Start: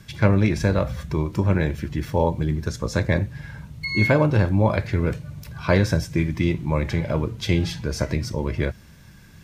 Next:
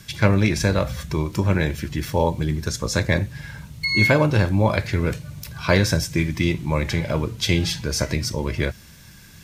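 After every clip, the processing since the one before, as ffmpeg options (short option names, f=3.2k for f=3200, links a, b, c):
-af "highshelf=f=2.4k:g=10"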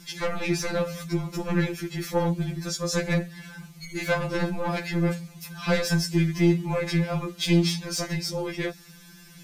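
-af "asoftclip=type=tanh:threshold=-15dB,afftfilt=real='re*2.83*eq(mod(b,8),0)':imag='im*2.83*eq(mod(b,8),0)':win_size=2048:overlap=0.75"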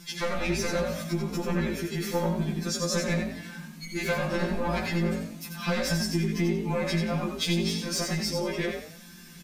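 -filter_complex "[0:a]acompressor=threshold=-24dB:ratio=6,asplit=2[a][b];[b]asplit=4[c][d][e][f];[c]adelay=89,afreqshift=49,volume=-5.5dB[g];[d]adelay=178,afreqshift=98,volume=-15.4dB[h];[e]adelay=267,afreqshift=147,volume=-25.3dB[i];[f]adelay=356,afreqshift=196,volume=-35.2dB[j];[g][h][i][j]amix=inputs=4:normalize=0[k];[a][k]amix=inputs=2:normalize=0"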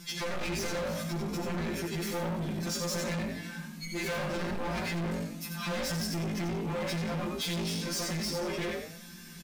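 -filter_complex "[0:a]asplit=2[a][b];[b]adelay=48,volume=-13dB[c];[a][c]amix=inputs=2:normalize=0,asoftclip=type=hard:threshold=-31dB"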